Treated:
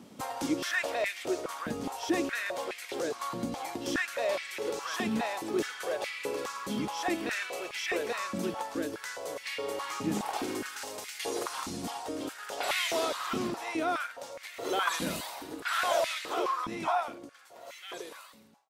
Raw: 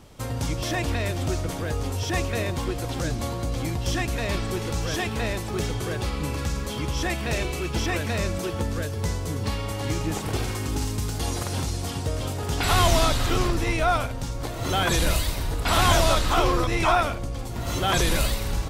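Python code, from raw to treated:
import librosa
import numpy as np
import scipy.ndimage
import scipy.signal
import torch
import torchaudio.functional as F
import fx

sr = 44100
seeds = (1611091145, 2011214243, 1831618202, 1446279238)

y = fx.fade_out_tail(x, sr, length_s=5.74)
y = fx.rider(y, sr, range_db=10, speed_s=2.0)
y = fx.filter_held_highpass(y, sr, hz=4.8, low_hz=220.0, high_hz=2100.0)
y = y * librosa.db_to_amplitude(-7.5)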